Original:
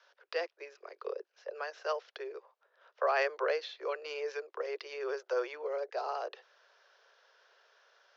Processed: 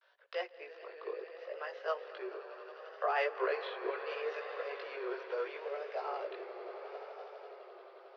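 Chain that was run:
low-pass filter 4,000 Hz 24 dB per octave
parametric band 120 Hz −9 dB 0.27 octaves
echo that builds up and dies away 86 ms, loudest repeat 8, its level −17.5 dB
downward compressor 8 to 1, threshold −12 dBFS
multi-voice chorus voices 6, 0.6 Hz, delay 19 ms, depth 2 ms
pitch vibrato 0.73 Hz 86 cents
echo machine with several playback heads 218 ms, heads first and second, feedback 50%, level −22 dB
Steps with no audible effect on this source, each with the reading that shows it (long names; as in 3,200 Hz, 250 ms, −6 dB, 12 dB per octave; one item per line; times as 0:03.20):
parametric band 120 Hz: nothing at its input below 320 Hz
downward compressor, threshold −12 dBFS: peak of its input −18.0 dBFS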